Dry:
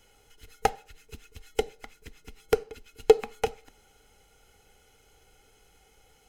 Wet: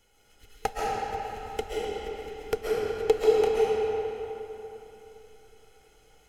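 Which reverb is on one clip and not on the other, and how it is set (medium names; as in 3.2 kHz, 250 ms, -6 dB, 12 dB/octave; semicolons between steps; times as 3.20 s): algorithmic reverb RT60 3.4 s, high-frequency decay 0.7×, pre-delay 95 ms, DRR -6 dB; trim -5.5 dB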